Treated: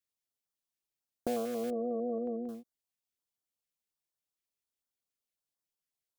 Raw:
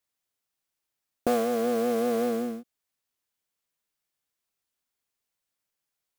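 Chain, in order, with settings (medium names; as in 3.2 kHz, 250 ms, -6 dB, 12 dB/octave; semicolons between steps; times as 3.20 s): 1.70–2.49 s: spectral gate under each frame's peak -20 dB strong; step-sequenced notch 11 Hz 890–2500 Hz; trim -7.5 dB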